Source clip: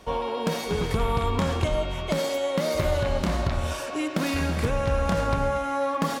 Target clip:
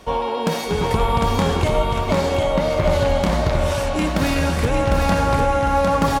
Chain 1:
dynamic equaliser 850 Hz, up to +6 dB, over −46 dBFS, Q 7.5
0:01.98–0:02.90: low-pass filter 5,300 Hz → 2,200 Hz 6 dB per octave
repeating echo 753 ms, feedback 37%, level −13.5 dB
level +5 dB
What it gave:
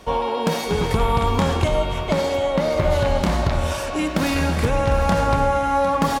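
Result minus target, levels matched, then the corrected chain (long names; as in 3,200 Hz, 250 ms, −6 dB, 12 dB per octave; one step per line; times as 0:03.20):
echo-to-direct −9.5 dB
dynamic equaliser 850 Hz, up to +6 dB, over −46 dBFS, Q 7.5
0:01.98–0:02.90: low-pass filter 5,300 Hz → 2,200 Hz 6 dB per octave
repeating echo 753 ms, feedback 37%, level −4 dB
level +5 dB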